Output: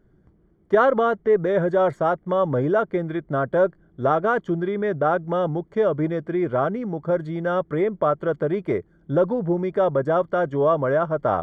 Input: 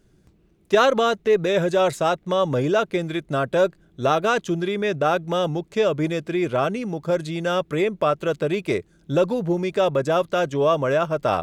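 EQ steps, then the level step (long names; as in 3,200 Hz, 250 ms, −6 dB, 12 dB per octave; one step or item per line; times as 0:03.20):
Savitzky-Golay smoothing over 41 samples
0.0 dB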